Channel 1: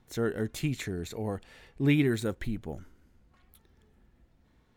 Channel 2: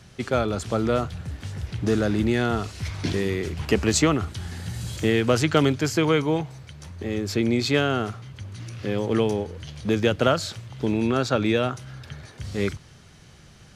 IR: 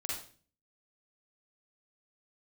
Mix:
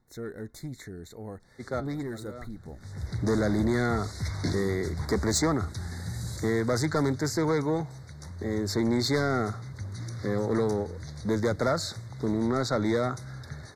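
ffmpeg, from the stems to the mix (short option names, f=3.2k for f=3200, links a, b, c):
-filter_complex "[0:a]asoftclip=type=tanh:threshold=-22dB,volume=-6dB,asplit=2[a][b];[1:a]dynaudnorm=f=170:g=17:m=11.5dB,asoftclip=type=tanh:threshold=-12.5dB,adelay=1400,volume=-6.5dB[c];[b]apad=whole_len=668452[d];[c][d]sidechaincompress=threshold=-51dB:ratio=5:attack=11:release=364[e];[a][e]amix=inputs=2:normalize=0,asuperstop=centerf=2800:order=12:qfactor=1.9"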